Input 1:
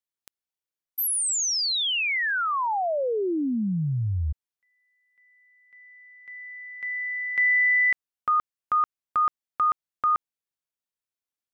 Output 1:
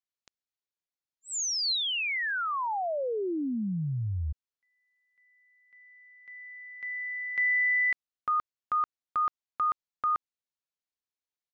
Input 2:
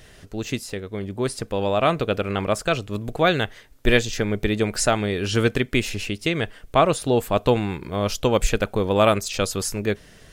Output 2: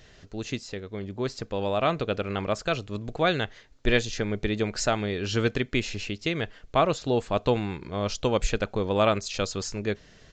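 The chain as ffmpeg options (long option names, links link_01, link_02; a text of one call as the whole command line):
ffmpeg -i in.wav -af "equalizer=frequency=4200:width_type=o:width=0.23:gain=3.5,aresample=16000,aresample=44100,volume=-5dB" out.wav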